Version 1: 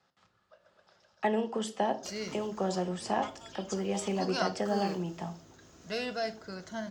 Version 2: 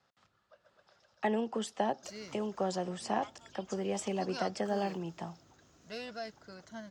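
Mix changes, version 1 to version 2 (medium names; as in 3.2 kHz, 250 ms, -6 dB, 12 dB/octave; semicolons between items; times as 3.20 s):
background -6.0 dB; reverb: off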